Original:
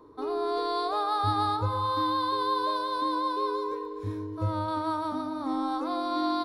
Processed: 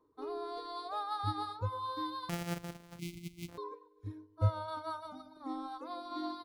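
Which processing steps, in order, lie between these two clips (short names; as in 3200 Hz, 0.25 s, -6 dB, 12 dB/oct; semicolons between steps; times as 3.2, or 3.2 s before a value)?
2.29–3.58 sample sorter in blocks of 256 samples; reverb removal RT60 1.8 s; 2.99–3.49 spectral gain 360–2000 Hz -27 dB; 4.41–5.37 comb 1.4 ms, depth 93%; upward expander 1.5:1, over -52 dBFS; gain -3 dB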